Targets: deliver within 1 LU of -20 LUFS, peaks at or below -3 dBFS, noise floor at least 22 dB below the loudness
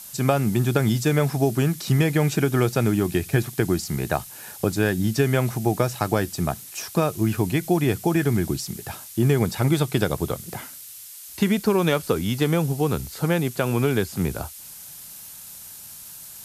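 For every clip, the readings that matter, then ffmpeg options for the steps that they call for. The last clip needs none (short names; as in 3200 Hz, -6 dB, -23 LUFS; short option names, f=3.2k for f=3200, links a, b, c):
noise floor -41 dBFS; noise floor target -45 dBFS; loudness -23.0 LUFS; peak -5.0 dBFS; loudness target -20.0 LUFS
-> -af "afftdn=nr=6:nf=-41"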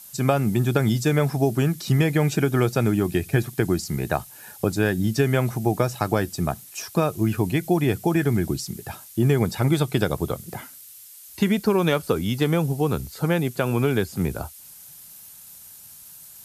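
noise floor -45 dBFS; loudness -23.0 LUFS; peak -5.0 dBFS; loudness target -20.0 LUFS
-> -af "volume=3dB,alimiter=limit=-3dB:level=0:latency=1"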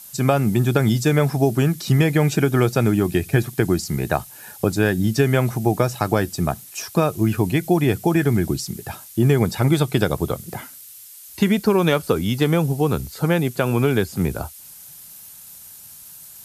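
loudness -20.0 LUFS; peak -3.0 dBFS; noise floor -42 dBFS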